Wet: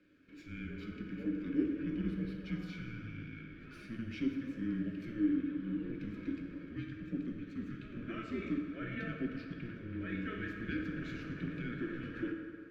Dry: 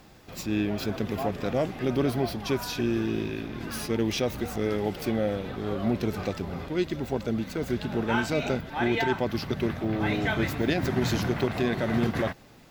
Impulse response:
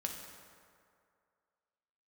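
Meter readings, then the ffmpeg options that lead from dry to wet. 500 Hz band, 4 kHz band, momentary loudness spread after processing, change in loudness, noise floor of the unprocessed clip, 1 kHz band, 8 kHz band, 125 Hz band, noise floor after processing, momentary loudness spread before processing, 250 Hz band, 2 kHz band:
-18.5 dB, -19.5 dB, 10 LU, -11.0 dB, -52 dBFS, -20.5 dB, under -25 dB, -12.5 dB, -51 dBFS, 6 LU, -8.0 dB, -12.5 dB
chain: -filter_complex "[0:a]asplit=3[a][b][c];[a]bandpass=f=530:t=q:w=8,volume=0dB[d];[b]bandpass=f=1.84k:t=q:w=8,volume=-6dB[e];[c]bandpass=f=2.48k:t=q:w=8,volume=-9dB[f];[d][e][f]amix=inputs=3:normalize=0,afreqshift=-230[g];[1:a]atrim=start_sample=2205[h];[g][h]afir=irnorm=-1:irlink=0,volume=-1dB"

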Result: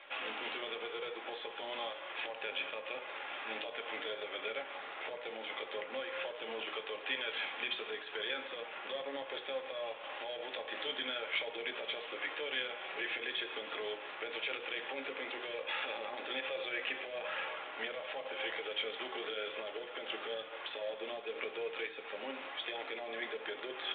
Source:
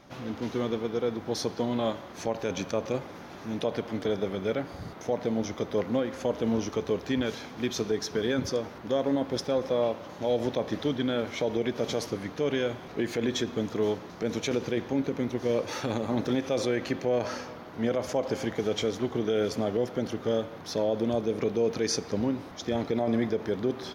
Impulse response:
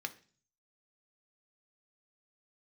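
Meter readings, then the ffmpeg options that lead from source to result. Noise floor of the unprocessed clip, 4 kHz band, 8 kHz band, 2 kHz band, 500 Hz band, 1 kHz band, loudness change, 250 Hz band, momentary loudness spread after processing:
-44 dBFS, -1.0 dB, under -40 dB, +1.5 dB, -13.5 dB, -6.0 dB, -9.5 dB, -23.0 dB, 5 LU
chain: -filter_complex "[0:a]highpass=f=470:w=0.5412,highpass=f=470:w=1.3066,acompressor=threshold=-36dB:ratio=10,alimiter=level_in=10dB:limit=-24dB:level=0:latency=1:release=20,volume=-10dB,lowpass=f=3k:t=q:w=3,aresample=16000,acrusher=bits=3:mode=log:mix=0:aa=0.000001,aresample=44100,flanger=delay=1.9:depth=3.4:regen=-64:speed=0.97:shape=sinusoidal,aeval=exprs='0.0355*(cos(1*acos(clip(val(0)/0.0355,-1,1)))-cos(1*PI/2))+0.00141*(cos(7*acos(clip(val(0)/0.0355,-1,1)))-cos(7*PI/2))':c=same[a];[1:a]atrim=start_sample=2205,afade=t=out:st=0.15:d=0.01,atrim=end_sample=7056[b];[a][b]afir=irnorm=-1:irlink=0,volume=8dB" -ar 8000 -c:a pcm_mulaw

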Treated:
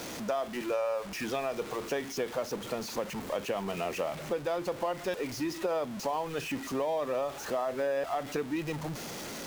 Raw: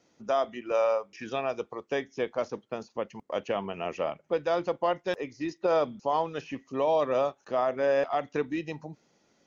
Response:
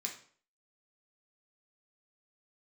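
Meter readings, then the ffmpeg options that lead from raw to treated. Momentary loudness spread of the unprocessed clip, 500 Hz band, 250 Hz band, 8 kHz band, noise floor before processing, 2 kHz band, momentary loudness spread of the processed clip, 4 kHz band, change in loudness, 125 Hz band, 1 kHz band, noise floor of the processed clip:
10 LU, -4.0 dB, 0.0 dB, n/a, -69 dBFS, -1.0 dB, 4 LU, +2.0 dB, -3.5 dB, +1.5 dB, -4.5 dB, -42 dBFS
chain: -af "aeval=exprs='val(0)+0.5*0.0188*sgn(val(0))':c=same,acompressor=threshold=-29dB:ratio=4"

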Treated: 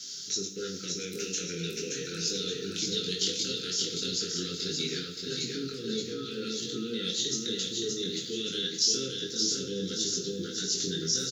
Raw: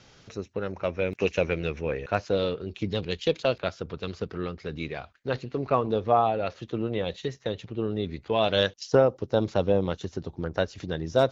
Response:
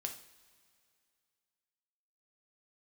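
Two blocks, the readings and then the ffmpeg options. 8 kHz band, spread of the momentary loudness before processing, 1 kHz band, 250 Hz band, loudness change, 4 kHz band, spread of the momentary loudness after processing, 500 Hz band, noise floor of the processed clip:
n/a, 12 LU, -22.0 dB, -4.0 dB, -2.5 dB, +7.5 dB, 6 LU, -11.0 dB, -40 dBFS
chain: -filter_complex "[0:a]acrossover=split=3000[a][b];[b]acompressor=threshold=-42dB:ratio=4:attack=1:release=60[c];[a][c]amix=inputs=2:normalize=0,highpass=f=150:w=0.5412,highpass=f=150:w=1.3066,equalizer=f=760:t=o:w=1.9:g=-4.5,acompressor=threshold=-28dB:ratio=6,alimiter=level_in=2dB:limit=-24dB:level=0:latency=1:release=67,volume=-2dB,flanger=delay=20:depth=3.4:speed=0.4,aexciter=amount=15.4:drive=2.6:freq=3.7k,asuperstop=centerf=810:order=20:qfactor=0.98,aecho=1:1:574|1148|1722|2296|2870:0.631|0.259|0.106|0.0435|0.0178[d];[1:a]atrim=start_sample=2205[e];[d][e]afir=irnorm=-1:irlink=0,volume=5dB"

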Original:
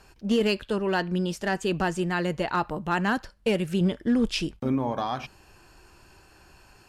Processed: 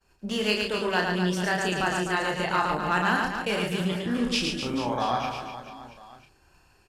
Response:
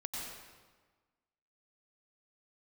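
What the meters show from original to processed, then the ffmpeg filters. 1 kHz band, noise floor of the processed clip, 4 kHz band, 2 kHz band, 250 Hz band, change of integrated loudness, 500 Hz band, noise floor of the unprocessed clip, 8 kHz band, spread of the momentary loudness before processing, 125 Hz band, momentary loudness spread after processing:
+3.5 dB, -62 dBFS, +4.5 dB, +4.5 dB, -3.0 dB, +0.5 dB, -1.5 dB, -56 dBFS, +4.5 dB, 5 LU, -2.0 dB, 9 LU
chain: -filter_complex "[0:a]agate=range=-33dB:threshold=-45dB:ratio=3:detection=peak,acrossover=split=730|3200[a][b][c];[a]alimiter=level_in=3dB:limit=-24dB:level=0:latency=1:release=358,volume=-3dB[d];[d][b][c]amix=inputs=3:normalize=0,asplit=2[e][f];[f]adelay=33,volume=-4dB[g];[e][g]amix=inputs=2:normalize=0,aecho=1:1:110|253|438.9|680.6|994.7:0.631|0.398|0.251|0.158|0.1,volume=1dB"

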